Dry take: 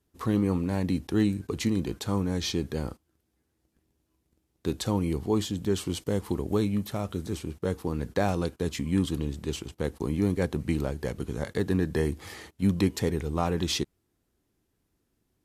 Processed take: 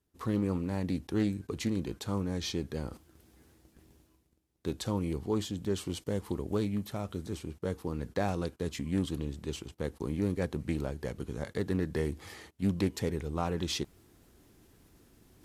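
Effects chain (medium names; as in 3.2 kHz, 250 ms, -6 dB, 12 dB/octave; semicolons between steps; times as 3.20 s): reverse; upward compressor, threshold -38 dBFS; reverse; loudspeaker Doppler distortion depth 0.19 ms; trim -5 dB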